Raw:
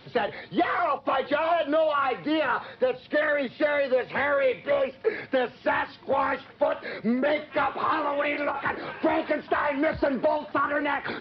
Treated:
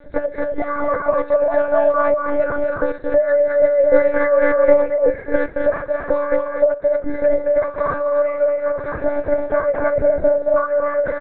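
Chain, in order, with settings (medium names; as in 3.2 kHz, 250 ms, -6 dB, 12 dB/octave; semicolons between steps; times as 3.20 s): high-pass 44 Hz; expander -55 dBFS; tilt EQ -4 dB/octave; comb 1.9 ms, depth 93%; dynamic bell 400 Hz, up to +4 dB, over -31 dBFS, Q 1.8; in parallel at -1.5 dB: compression, threshold -25 dBFS, peak gain reduction 17.5 dB; on the sum: static phaser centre 590 Hz, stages 8; on a send: loudspeakers at several distances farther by 78 m -4 dB, 91 m -6 dB; on the sum: monotone LPC vocoder at 8 kHz 290 Hz; trim -1 dB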